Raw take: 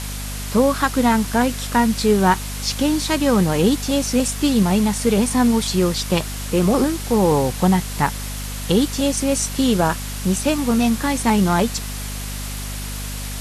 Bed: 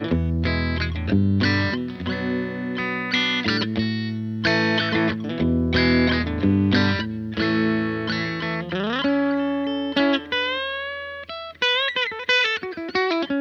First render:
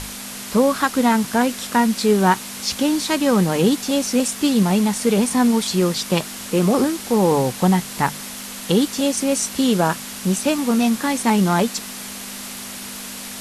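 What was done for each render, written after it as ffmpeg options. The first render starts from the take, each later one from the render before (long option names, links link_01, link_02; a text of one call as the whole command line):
ffmpeg -i in.wav -af "bandreject=frequency=50:width_type=h:width=6,bandreject=frequency=100:width_type=h:width=6,bandreject=frequency=150:width_type=h:width=6" out.wav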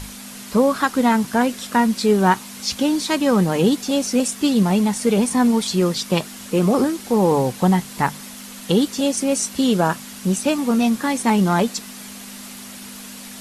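ffmpeg -i in.wav -af "afftdn=noise_reduction=6:noise_floor=-33" out.wav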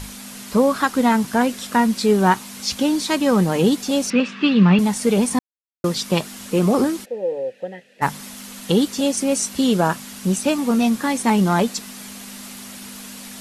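ffmpeg -i in.wav -filter_complex "[0:a]asettb=1/sr,asplit=3[link_01][link_02][link_03];[link_01]atrim=end=4.104[link_04];[link_02]atrim=start=4.1:end=4.79,asetpts=PTS-STARTPTS,afade=type=in:duration=0.004:curve=qsin,afade=type=out:start_time=0.686:duration=0.004:curve=qsin,highpass=frequency=150:width=0.5412,highpass=frequency=150:width=1.3066,equalizer=frequency=170:width_type=q:width=4:gain=9,equalizer=frequency=700:width_type=q:width=4:gain=-7,equalizer=frequency=1200:width_type=q:width=4:gain=8,equalizer=frequency=1700:width_type=q:width=4:gain=7,equalizer=frequency=2600:width_type=q:width=4:gain=10,lowpass=frequency=4000:width=0.5412,lowpass=frequency=4000:width=1.3066[link_05];[link_03]atrim=start=4.786[link_06];[link_04][link_05]acrossfade=duration=0.004:curve1=hsin:curve2=qsin[link_07];[link_07][link_06]acrossfade=duration=0.004:curve1=qsin:curve2=hsin,asplit=3[link_08][link_09][link_10];[link_08]afade=type=out:start_time=7.04:duration=0.02[link_11];[link_09]asplit=3[link_12][link_13][link_14];[link_12]bandpass=frequency=530:width_type=q:width=8,volume=0dB[link_15];[link_13]bandpass=frequency=1840:width_type=q:width=8,volume=-6dB[link_16];[link_14]bandpass=frequency=2480:width_type=q:width=8,volume=-9dB[link_17];[link_15][link_16][link_17]amix=inputs=3:normalize=0,afade=type=in:start_time=7.04:duration=0.02,afade=type=out:start_time=8.01:duration=0.02[link_18];[link_10]afade=type=in:start_time=8.01:duration=0.02[link_19];[link_11][link_18][link_19]amix=inputs=3:normalize=0,asplit=3[link_20][link_21][link_22];[link_20]atrim=end=5.39,asetpts=PTS-STARTPTS,afade=type=out:start_time=5.386:duration=0.004:curve=hsin[link_23];[link_21]atrim=start=5.39:end=5.84,asetpts=PTS-STARTPTS,volume=0[link_24];[link_22]atrim=start=5.84,asetpts=PTS-STARTPTS,afade=type=in:duration=0.004:curve=hsin[link_25];[link_23][link_24][link_25]concat=n=3:v=0:a=1" out.wav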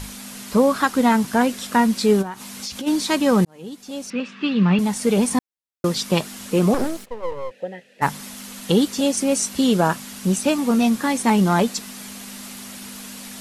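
ffmpeg -i in.wav -filter_complex "[0:a]asplit=3[link_01][link_02][link_03];[link_01]afade=type=out:start_time=2.21:duration=0.02[link_04];[link_02]acompressor=threshold=-26dB:ratio=16:attack=3.2:release=140:knee=1:detection=peak,afade=type=in:start_time=2.21:duration=0.02,afade=type=out:start_time=2.86:duration=0.02[link_05];[link_03]afade=type=in:start_time=2.86:duration=0.02[link_06];[link_04][link_05][link_06]amix=inputs=3:normalize=0,asettb=1/sr,asplit=3[link_07][link_08][link_09];[link_07]atrim=end=6.744[link_10];[link_08]atrim=start=6.74:end=7.51,asetpts=PTS-STARTPTS,afade=type=in:duration=0.004:curve=qsin,afade=type=out:start_time=0.766:duration=0.004:curve=qsin,aeval=exprs='max(val(0),0)':channel_layout=same[link_11];[link_09]atrim=start=7.506[link_12];[link_10][link_11]acrossfade=duration=0.004:curve1=hsin:curve2=qsin[link_13];[link_13][link_12]acrossfade=duration=0.004:curve1=qsin:curve2=hsin,asplit=2[link_14][link_15];[link_14]atrim=end=3.45,asetpts=PTS-STARTPTS,afade=type=out:start_time=3.446:duration=0.004:curve=hsin[link_16];[link_15]atrim=start=3.45,asetpts=PTS-STARTPTS,afade=type=in:duration=1.85[link_17];[link_16][link_17]concat=n=2:v=0:a=1" out.wav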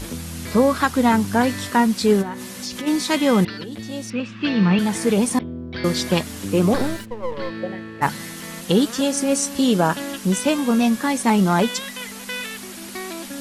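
ffmpeg -i in.wav -i bed.wav -filter_complex "[1:a]volume=-11dB[link_01];[0:a][link_01]amix=inputs=2:normalize=0" out.wav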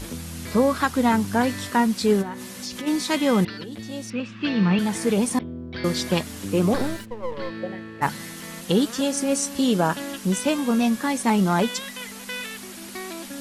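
ffmpeg -i in.wav -af "volume=-3dB" out.wav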